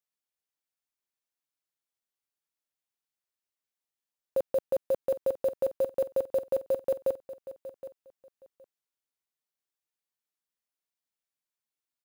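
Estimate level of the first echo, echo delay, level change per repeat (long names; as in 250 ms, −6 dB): −14.5 dB, 768 ms, −14.5 dB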